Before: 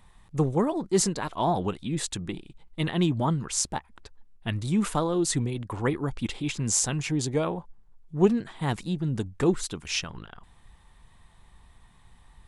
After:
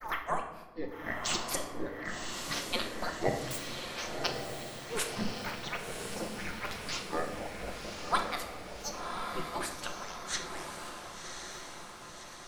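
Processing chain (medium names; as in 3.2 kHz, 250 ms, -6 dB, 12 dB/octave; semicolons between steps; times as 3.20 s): spectral gate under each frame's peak -15 dB weak; granulator 202 ms, grains 4.1 per s, spray 557 ms, pitch spread up and down by 12 st; on a send: echo that smears into a reverb 1078 ms, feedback 58%, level -5 dB; on the sum: simulated room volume 530 m³, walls mixed, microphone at 0.88 m; trim +6.5 dB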